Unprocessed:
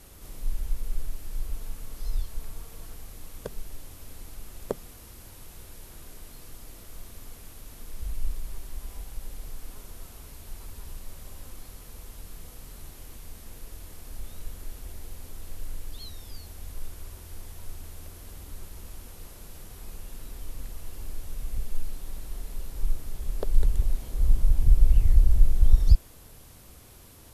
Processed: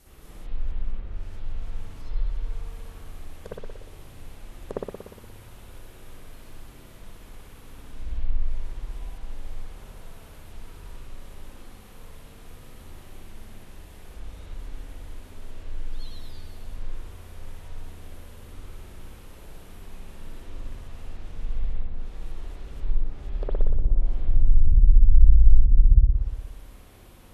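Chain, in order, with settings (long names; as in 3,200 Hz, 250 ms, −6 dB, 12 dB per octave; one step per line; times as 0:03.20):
treble cut that deepens with the level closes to 300 Hz, closed at −14 dBFS
spring reverb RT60 1.2 s, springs 59 ms, chirp 45 ms, DRR −8 dB
level −6.5 dB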